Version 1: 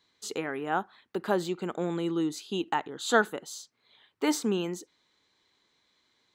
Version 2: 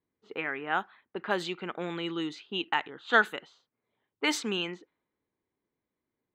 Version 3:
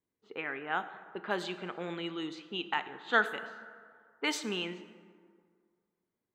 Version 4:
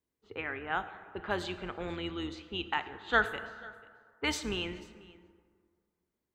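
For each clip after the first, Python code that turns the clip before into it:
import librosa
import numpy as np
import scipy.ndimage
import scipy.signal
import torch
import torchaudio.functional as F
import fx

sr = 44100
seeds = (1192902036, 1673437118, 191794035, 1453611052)

y1 = fx.env_lowpass(x, sr, base_hz=410.0, full_db=-23.0)
y1 = fx.peak_eq(y1, sr, hz=2500.0, db=15.0, octaves=2.0)
y1 = y1 * 10.0 ** (-6.0 / 20.0)
y2 = fx.rev_plate(y1, sr, seeds[0], rt60_s=2.0, hf_ratio=0.5, predelay_ms=0, drr_db=10.5)
y2 = y2 * 10.0 ** (-4.0 / 20.0)
y3 = fx.octave_divider(y2, sr, octaves=2, level_db=-5.0)
y3 = y3 + 10.0 ** (-23.0 / 20.0) * np.pad(y3, (int(490 * sr / 1000.0), 0))[:len(y3)]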